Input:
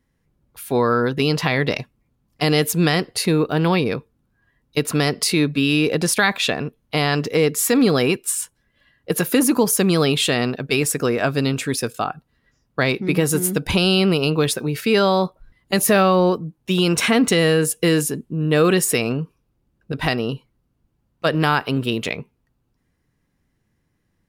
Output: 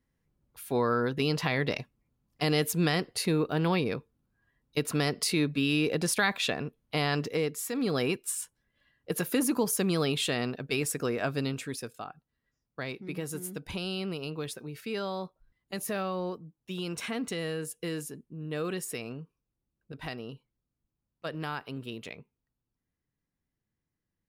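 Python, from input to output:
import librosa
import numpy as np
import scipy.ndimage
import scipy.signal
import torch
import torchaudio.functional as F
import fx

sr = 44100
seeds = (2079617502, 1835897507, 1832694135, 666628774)

y = fx.gain(x, sr, db=fx.line((7.23, -9.0), (7.71, -17.0), (7.98, -10.5), (11.39, -10.5), (12.05, -17.5)))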